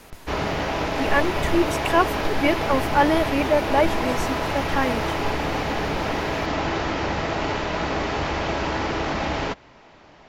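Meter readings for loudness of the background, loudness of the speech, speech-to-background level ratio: −25.5 LKFS, −23.5 LKFS, 2.0 dB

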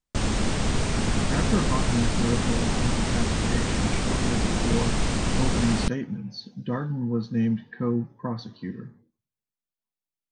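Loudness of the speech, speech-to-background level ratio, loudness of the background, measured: −30.0 LKFS, −4.0 dB, −26.0 LKFS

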